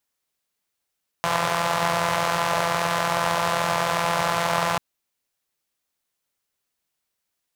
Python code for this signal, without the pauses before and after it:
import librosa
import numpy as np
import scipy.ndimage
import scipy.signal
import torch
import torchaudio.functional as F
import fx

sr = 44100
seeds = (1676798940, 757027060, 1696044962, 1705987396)

y = fx.engine_four(sr, seeds[0], length_s=3.54, rpm=5100, resonances_hz=(150.0, 650.0, 940.0))